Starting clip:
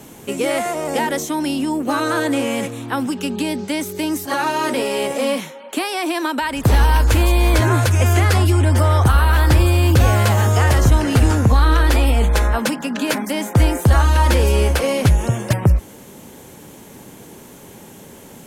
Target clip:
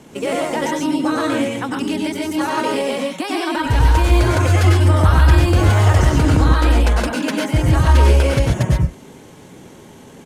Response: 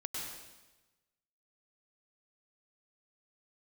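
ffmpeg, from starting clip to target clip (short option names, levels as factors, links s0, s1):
-filter_complex "[0:a]atempo=1.8,adynamicsmooth=sensitivity=7:basefreq=7400[s0];[1:a]atrim=start_sample=2205,atrim=end_sample=6615[s1];[s0][s1]afir=irnorm=-1:irlink=0,volume=1.19"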